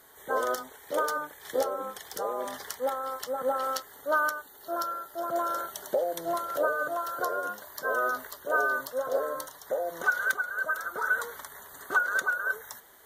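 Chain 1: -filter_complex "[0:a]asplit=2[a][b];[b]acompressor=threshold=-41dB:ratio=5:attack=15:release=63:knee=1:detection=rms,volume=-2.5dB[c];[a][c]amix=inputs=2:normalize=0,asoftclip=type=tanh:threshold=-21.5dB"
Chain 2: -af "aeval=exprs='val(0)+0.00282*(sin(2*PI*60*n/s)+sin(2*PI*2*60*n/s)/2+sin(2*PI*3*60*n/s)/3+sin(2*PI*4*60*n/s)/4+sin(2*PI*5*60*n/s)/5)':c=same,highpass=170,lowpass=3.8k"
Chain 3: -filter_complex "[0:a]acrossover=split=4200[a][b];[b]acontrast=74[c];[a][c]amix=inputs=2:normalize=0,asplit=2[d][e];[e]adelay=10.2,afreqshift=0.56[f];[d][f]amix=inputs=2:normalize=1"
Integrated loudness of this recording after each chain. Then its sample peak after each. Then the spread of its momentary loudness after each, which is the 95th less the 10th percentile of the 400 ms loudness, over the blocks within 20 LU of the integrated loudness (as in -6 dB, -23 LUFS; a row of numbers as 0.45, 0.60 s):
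-30.5, -30.5, -33.0 LUFS; -21.5, -14.0, -14.0 dBFS; 7, 9, 8 LU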